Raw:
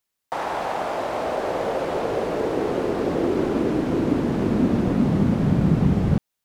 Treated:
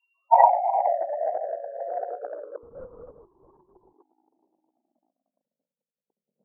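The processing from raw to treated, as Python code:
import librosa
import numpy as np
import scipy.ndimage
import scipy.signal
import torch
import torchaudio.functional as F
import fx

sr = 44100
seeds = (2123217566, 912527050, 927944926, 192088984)

p1 = np.r_[np.sort(x[:len(x) // 16 * 16].reshape(-1, 16), axis=1).ravel(), x[len(x) // 16 * 16:]]
p2 = scipy.signal.sosfilt(scipy.signal.butter(4, 2400.0, 'lowpass', fs=sr, output='sos'), p1)
p3 = p2 + fx.echo_feedback(p2, sr, ms=113, feedback_pct=40, wet_db=-4, dry=0)
p4 = fx.spec_topn(p3, sr, count=8)
p5 = fx.room_shoebox(p4, sr, seeds[0], volume_m3=41.0, walls='mixed', distance_m=2.6)
p6 = fx.spec_gate(p5, sr, threshold_db=-15, keep='strong')
p7 = fx.over_compress(p6, sr, threshold_db=-20.0, ratio=-0.5)
p8 = scipy.signal.sosfilt(scipy.signal.butter(4, 860.0, 'highpass', fs=sr, output='sos'), p7)
y = fx.lpc_vocoder(p8, sr, seeds[1], excitation='whisper', order=10, at=(2.63, 3.93))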